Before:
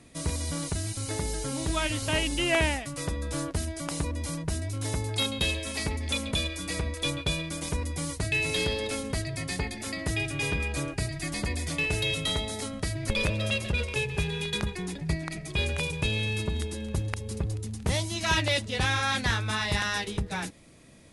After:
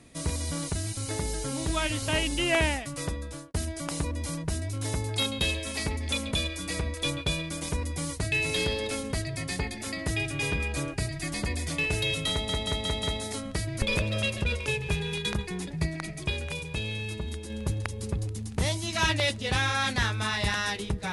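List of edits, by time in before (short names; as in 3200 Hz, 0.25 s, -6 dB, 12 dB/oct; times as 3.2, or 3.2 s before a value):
3.06–3.54 fade out linear
12.31 stutter 0.18 s, 5 plays
15.58–16.78 gain -4.5 dB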